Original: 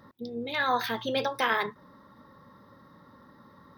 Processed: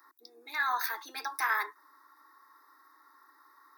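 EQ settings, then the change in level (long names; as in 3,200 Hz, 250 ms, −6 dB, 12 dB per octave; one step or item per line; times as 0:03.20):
Butterworth high-pass 300 Hz 72 dB per octave
spectral tilt +3 dB per octave
phaser with its sweep stopped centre 1,300 Hz, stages 4
−2.0 dB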